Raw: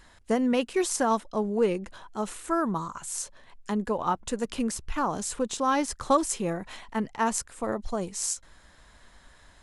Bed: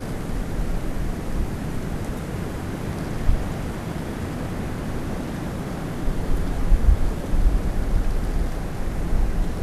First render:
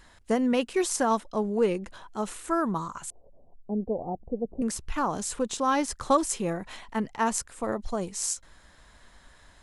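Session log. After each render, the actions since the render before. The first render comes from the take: 3.10–4.62 s: Chebyshev low-pass 750 Hz, order 5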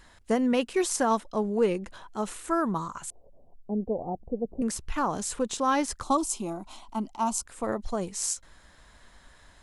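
6.03–7.46 s: static phaser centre 480 Hz, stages 6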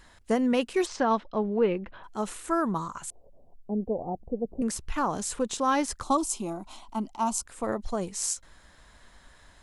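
0.85–2.03 s: low-pass 5.1 kHz -> 2.9 kHz 24 dB/octave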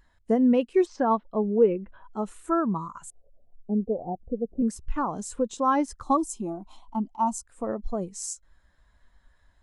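in parallel at +1.5 dB: compression, threshold -35 dBFS, peak gain reduction 15 dB; on the sum: spectral contrast expander 1.5:1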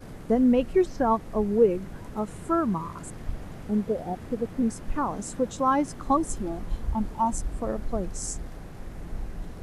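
add bed -13 dB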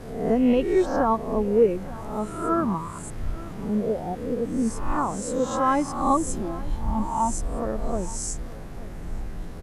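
reverse spectral sustain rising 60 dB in 0.72 s; echo from a far wall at 150 m, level -18 dB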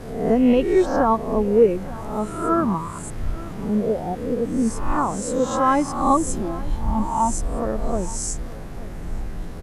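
trim +3.5 dB

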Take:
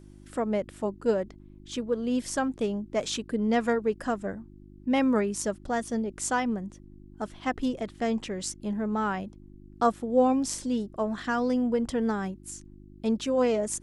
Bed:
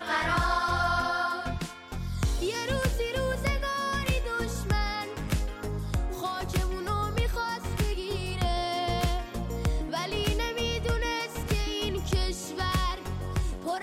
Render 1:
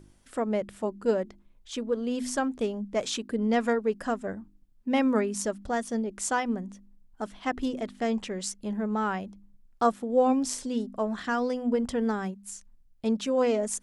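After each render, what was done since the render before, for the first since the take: de-hum 50 Hz, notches 7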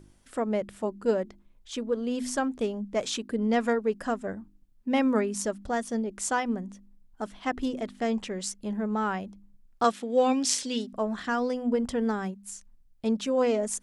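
9.84–10.93 s: frequency weighting D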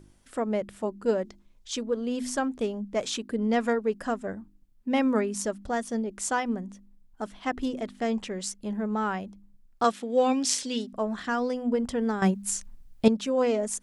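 1.23–1.83 s: peaking EQ 5.7 kHz +8 dB 1.5 oct; 12.22–13.08 s: gain +11 dB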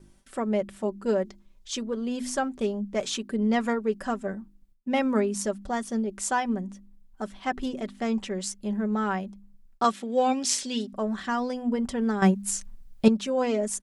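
gate with hold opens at -51 dBFS; comb 5.2 ms, depth 45%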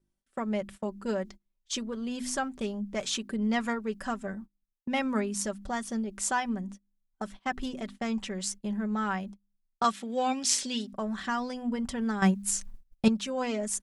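gate -40 dBFS, range -24 dB; dynamic bell 420 Hz, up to -8 dB, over -38 dBFS, Q 0.77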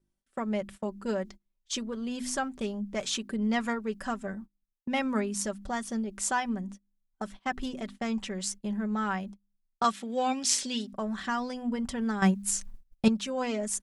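no audible change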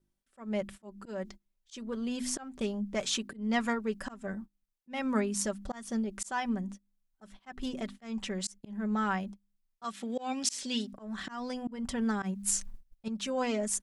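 slow attack 229 ms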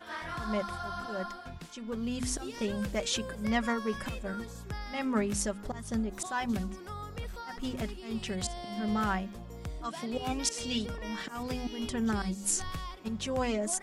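add bed -12 dB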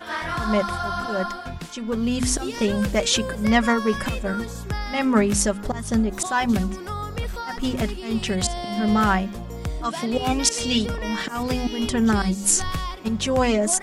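trim +11 dB

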